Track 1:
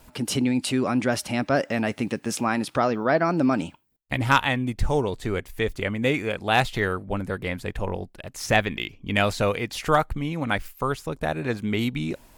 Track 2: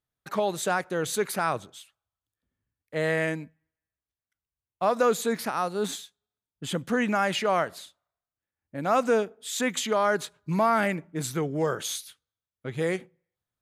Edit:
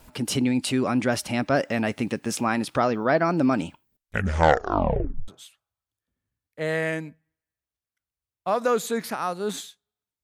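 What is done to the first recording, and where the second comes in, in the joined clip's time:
track 1
0:03.86: tape stop 1.42 s
0:05.28: continue with track 2 from 0:01.63

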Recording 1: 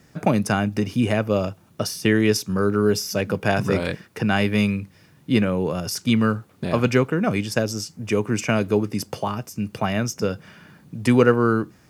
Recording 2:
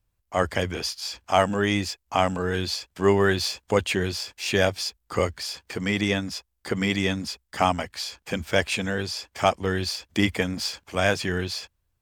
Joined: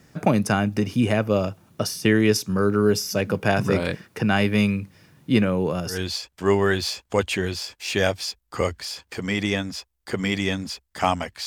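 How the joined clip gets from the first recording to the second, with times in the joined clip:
recording 1
0:05.93: continue with recording 2 from 0:02.51, crossfade 0.14 s

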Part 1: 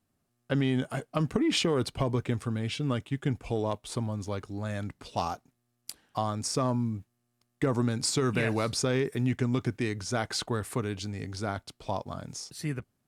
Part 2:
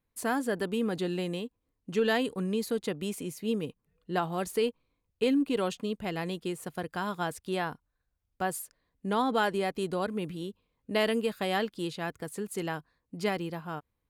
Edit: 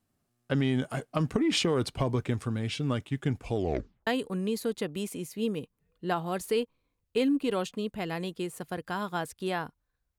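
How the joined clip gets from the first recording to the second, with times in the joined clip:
part 1
0:03.56: tape stop 0.51 s
0:04.07: continue with part 2 from 0:02.13

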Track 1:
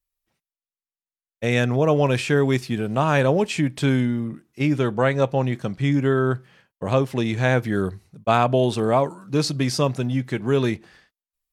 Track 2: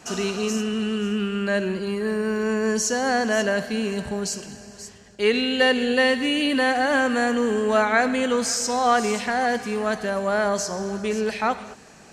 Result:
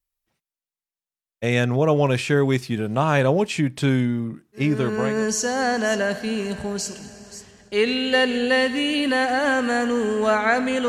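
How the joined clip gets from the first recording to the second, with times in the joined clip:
track 1
0:04.89: continue with track 2 from 0:02.36, crossfade 0.74 s equal-power

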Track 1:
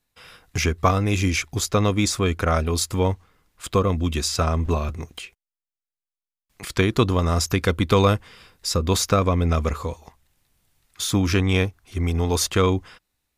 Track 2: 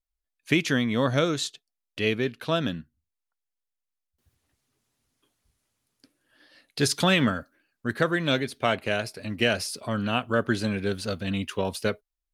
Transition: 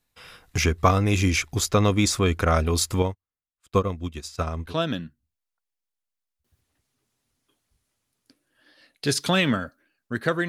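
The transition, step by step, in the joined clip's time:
track 1
0:03.02–0:04.75: expander for the loud parts 2.5 to 1, over −41 dBFS
0:04.68: continue with track 2 from 0:02.42, crossfade 0.14 s

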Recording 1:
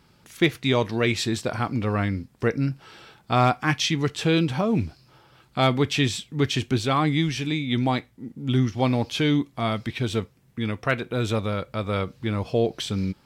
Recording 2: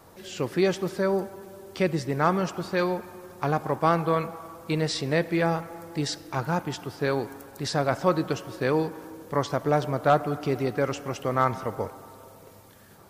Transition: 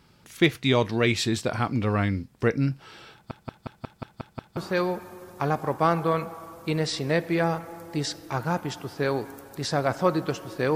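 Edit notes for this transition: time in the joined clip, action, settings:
recording 1
0:03.13: stutter in place 0.18 s, 8 plays
0:04.57: continue with recording 2 from 0:02.59

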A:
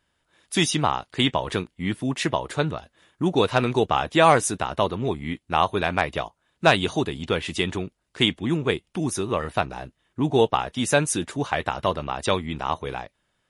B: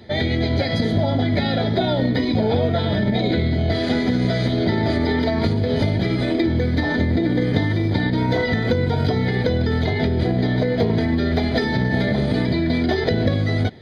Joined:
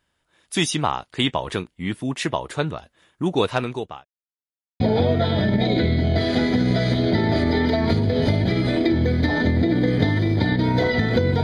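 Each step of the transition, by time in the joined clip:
A
0:03.45–0:04.05: fade out linear
0:04.05–0:04.80: silence
0:04.80: continue with B from 0:02.34

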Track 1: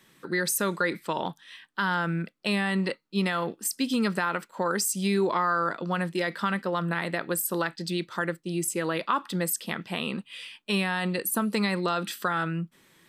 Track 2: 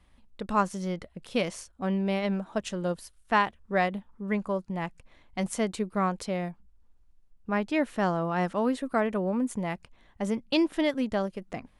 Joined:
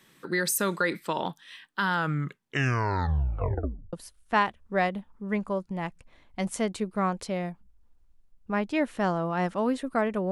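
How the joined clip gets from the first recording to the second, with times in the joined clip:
track 1
0:01.94: tape stop 1.99 s
0:03.93: continue with track 2 from 0:02.92

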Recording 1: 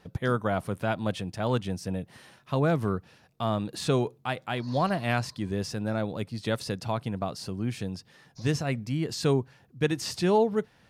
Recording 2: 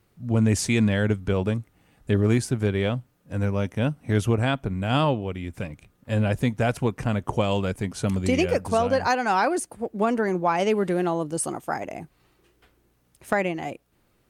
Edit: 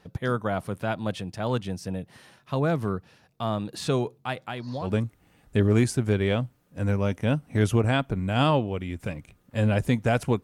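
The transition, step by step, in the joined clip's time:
recording 1
0:04.43–0:04.92: downward compressor 5 to 1, threshold −30 dBFS
0:04.86: continue with recording 2 from 0:01.40, crossfade 0.12 s

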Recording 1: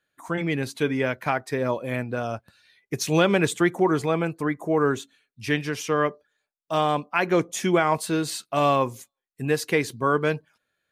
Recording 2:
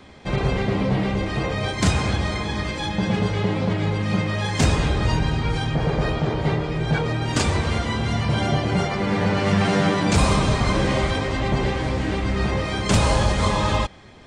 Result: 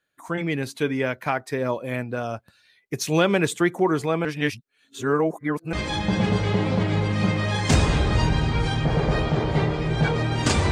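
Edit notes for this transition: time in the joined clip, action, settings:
recording 1
0:04.25–0:05.73: reverse
0:05.73: continue with recording 2 from 0:02.63

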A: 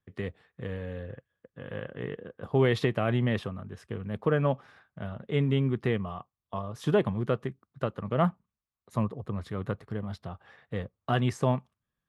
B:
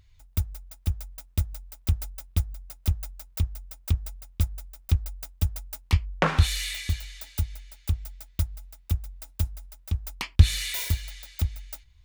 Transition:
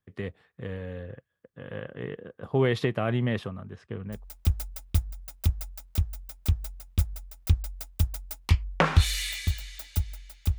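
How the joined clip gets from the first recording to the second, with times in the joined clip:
A
0:03.76–0:04.25: high-frequency loss of the air 94 metres
0:04.16: continue with B from 0:01.58, crossfade 0.18 s

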